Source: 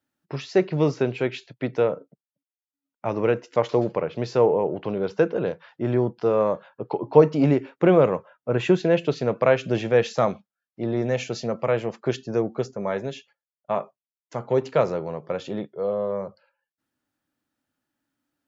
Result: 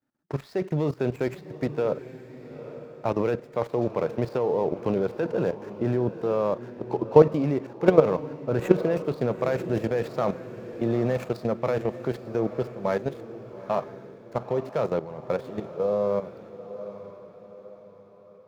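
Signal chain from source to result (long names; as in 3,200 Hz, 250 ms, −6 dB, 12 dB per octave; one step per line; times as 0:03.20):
running median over 15 samples
output level in coarse steps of 14 dB
feedback delay with all-pass diffusion 868 ms, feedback 43%, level −13 dB
level +4 dB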